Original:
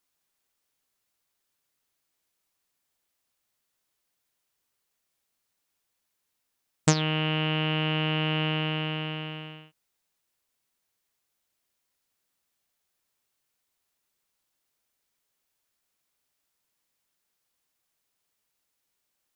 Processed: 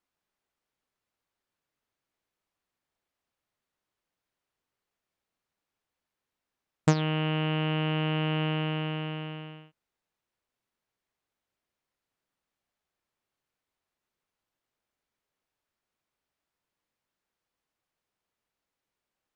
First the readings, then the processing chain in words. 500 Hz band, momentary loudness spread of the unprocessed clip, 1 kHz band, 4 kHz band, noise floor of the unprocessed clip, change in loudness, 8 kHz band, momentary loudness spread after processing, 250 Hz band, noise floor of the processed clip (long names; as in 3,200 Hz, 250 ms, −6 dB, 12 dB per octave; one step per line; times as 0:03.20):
−0.5 dB, 11 LU, −1.5 dB, −6.0 dB, −80 dBFS, −2.0 dB, −12.0 dB, 11 LU, 0.0 dB, below −85 dBFS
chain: low-pass filter 1,700 Hz 6 dB per octave